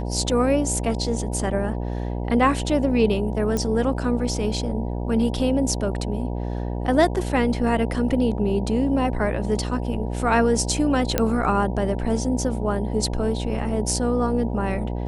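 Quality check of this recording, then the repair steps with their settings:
buzz 60 Hz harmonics 16 -27 dBFS
3.57 s: pop -12 dBFS
11.18 s: pop -5 dBFS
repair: de-click; de-hum 60 Hz, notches 16

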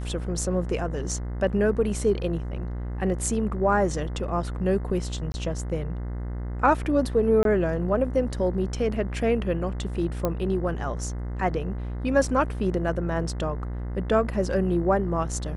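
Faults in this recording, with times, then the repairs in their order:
buzz 60 Hz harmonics 35 -31 dBFS
5.32–5.34 s: dropout 20 ms
7.43–7.45 s: dropout 22 ms
10.25 s: pop -12 dBFS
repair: de-click; de-hum 60 Hz, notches 35; interpolate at 5.32 s, 20 ms; interpolate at 7.43 s, 22 ms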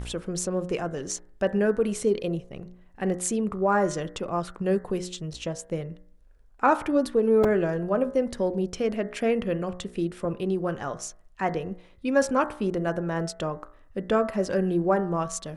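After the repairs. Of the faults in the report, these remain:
nothing left

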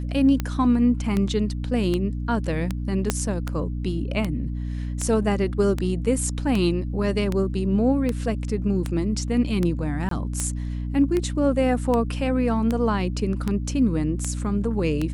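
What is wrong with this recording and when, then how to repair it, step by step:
hum 60 Hz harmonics 5 -28 dBFS
tick 78 rpm -12 dBFS
3.10 s: pop -6 dBFS
10.09–10.11 s: dropout 23 ms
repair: de-click; de-hum 60 Hz, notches 5; interpolate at 10.09 s, 23 ms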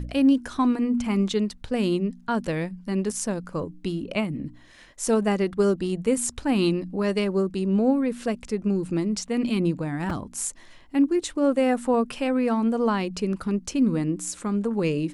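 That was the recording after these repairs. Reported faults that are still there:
3.10 s: pop

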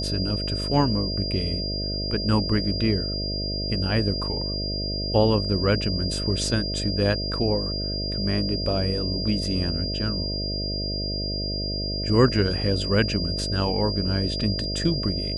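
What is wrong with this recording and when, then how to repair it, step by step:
buzz 50 Hz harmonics 13 -30 dBFS
whine 4.8 kHz -29 dBFS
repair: de-hum 50 Hz, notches 13; band-stop 4.8 kHz, Q 30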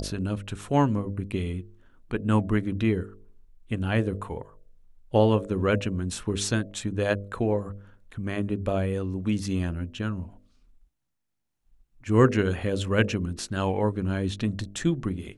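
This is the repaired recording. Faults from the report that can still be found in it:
nothing left

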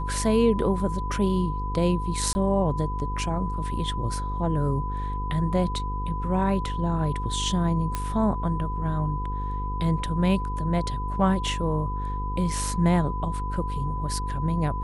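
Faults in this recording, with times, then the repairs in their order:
buzz 50 Hz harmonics 10 -30 dBFS
whine 1 kHz -32 dBFS
2.33–2.35 s: dropout 20 ms
7.95 s: pop -13 dBFS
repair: de-click; band-stop 1 kHz, Q 30; de-hum 50 Hz, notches 10; interpolate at 2.33 s, 20 ms

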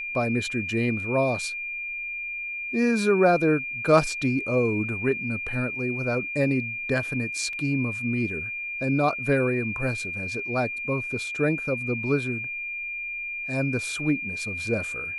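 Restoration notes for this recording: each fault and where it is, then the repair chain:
whine 2.4 kHz -30 dBFS
7.53 s: dropout 2.6 ms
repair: band-stop 2.4 kHz, Q 30; interpolate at 7.53 s, 2.6 ms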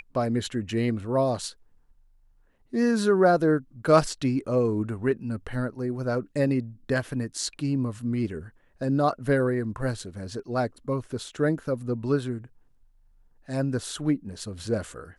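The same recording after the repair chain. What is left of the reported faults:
nothing left

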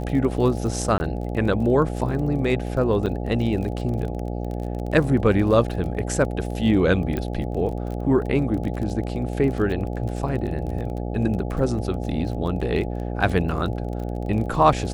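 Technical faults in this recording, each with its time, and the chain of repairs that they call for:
buzz 60 Hz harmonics 14 -28 dBFS
crackle 30 per s -30 dBFS
0.98–1.00 s: dropout 20 ms
3.06–3.07 s: dropout 7.4 ms
7.17 s: pop -15 dBFS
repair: de-click; de-hum 60 Hz, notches 14; interpolate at 0.98 s, 20 ms; interpolate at 3.06 s, 7.4 ms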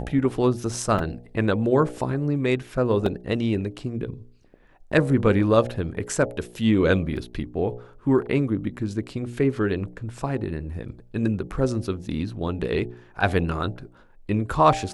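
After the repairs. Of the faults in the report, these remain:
7.17 s: pop

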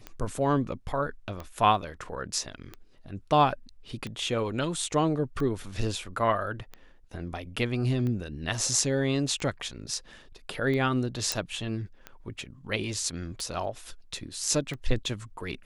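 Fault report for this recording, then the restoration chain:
tick 45 rpm -23 dBFS
11.32 s: pop -9 dBFS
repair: de-click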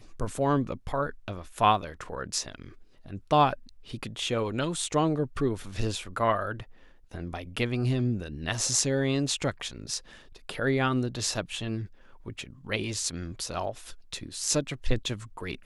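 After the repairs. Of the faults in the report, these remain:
nothing left

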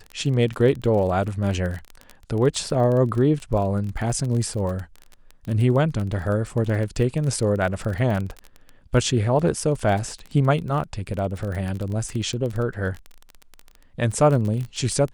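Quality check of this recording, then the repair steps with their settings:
crackle 25 per s -27 dBFS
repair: de-click

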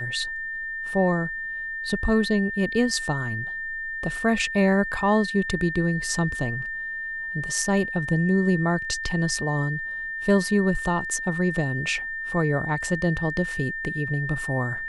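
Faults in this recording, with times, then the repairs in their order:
whine 1.8 kHz -29 dBFS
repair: band-stop 1.8 kHz, Q 30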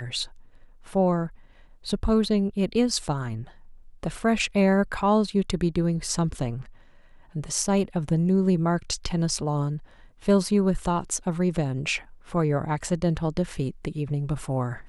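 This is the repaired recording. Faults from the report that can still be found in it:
nothing left

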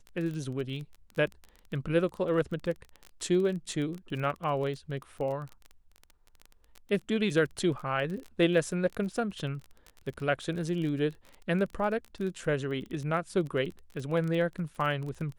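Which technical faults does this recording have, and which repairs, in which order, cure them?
crackle 24 per s -35 dBFS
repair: de-click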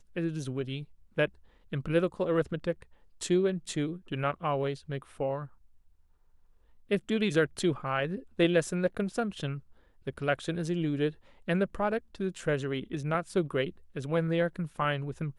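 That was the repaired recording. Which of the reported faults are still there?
nothing left

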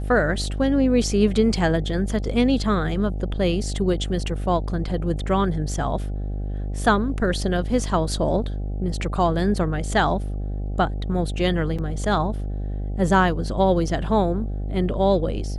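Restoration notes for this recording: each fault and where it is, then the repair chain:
buzz 50 Hz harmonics 16 -27 dBFS
11.78–11.79 s: dropout 5.9 ms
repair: de-hum 50 Hz, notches 16; interpolate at 11.78 s, 5.9 ms

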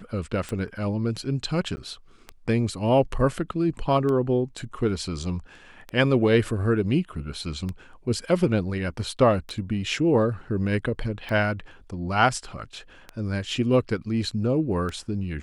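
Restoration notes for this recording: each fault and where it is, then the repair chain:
tick 33 1/3 rpm -19 dBFS
1.76–1.77 s: dropout 10 ms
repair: de-click; interpolate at 1.76 s, 10 ms

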